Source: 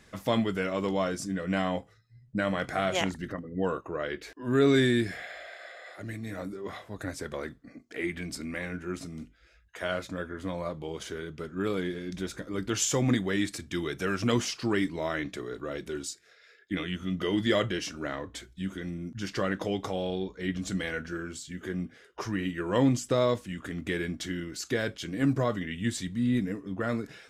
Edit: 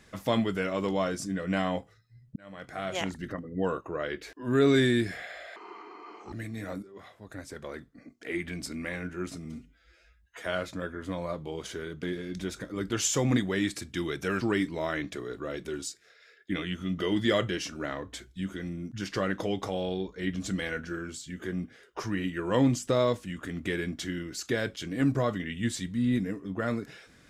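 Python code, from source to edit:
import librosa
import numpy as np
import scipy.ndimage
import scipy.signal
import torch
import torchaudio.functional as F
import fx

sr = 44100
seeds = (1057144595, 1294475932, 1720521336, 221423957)

y = fx.edit(x, sr, fx.fade_in_span(start_s=2.36, length_s=0.98),
    fx.speed_span(start_s=5.56, length_s=0.46, speed=0.6),
    fx.fade_in_from(start_s=6.52, length_s=1.72, floor_db=-12.0),
    fx.stretch_span(start_s=9.14, length_s=0.66, factor=1.5),
    fx.cut(start_s=11.39, length_s=0.41),
    fx.cut(start_s=14.18, length_s=0.44), tone=tone)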